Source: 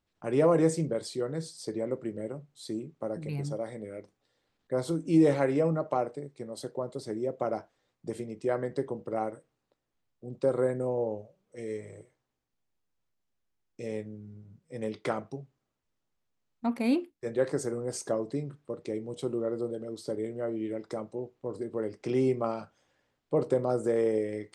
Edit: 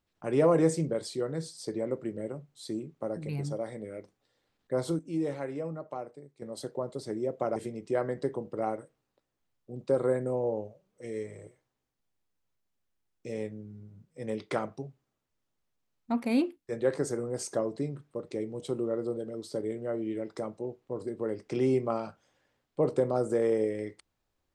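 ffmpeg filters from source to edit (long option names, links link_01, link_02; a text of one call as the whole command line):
ffmpeg -i in.wav -filter_complex "[0:a]asplit=4[link_01][link_02][link_03][link_04];[link_01]atrim=end=4.992[link_05];[link_02]atrim=start=4.988:end=6.422,asetpts=PTS-STARTPTS,volume=-9.5dB[link_06];[link_03]atrim=start=6.418:end=7.562[link_07];[link_04]atrim=start=8.098[link_08];[link_05][link_06]acrossfade=duration=0.004:curve1=hsin:curve2=hsin[link_09];[link_09][link_07]acrossfade=duration=0.004:curve1=hsin:curve2=hsin[link_10];[link_10][link_08]acrossfade=duration=0.004:curve1=hsin:curve2=hsin" out.wav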